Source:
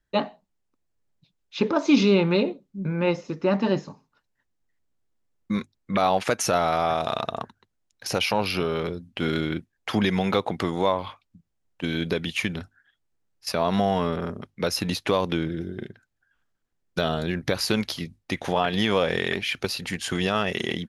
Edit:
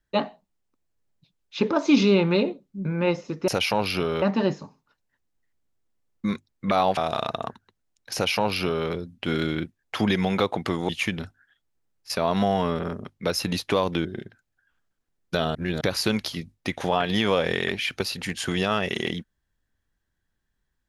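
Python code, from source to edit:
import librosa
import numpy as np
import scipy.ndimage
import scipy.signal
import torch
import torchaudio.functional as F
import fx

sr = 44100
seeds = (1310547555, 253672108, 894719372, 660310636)

y = fx.edit(x, sr, fx.cut(start_s=6.23, length_s=0.68),
    fx.duplicate(start_s=8.08, length_s=0.74, to_s=3.48),
    fx.cut(start_s=10.83, length_s=1.43),
    fx.cut(start_s=15.42, length_s=0.27),
    fx.reverse_span(start_s=17.19, length_s=0.26), tone=tone)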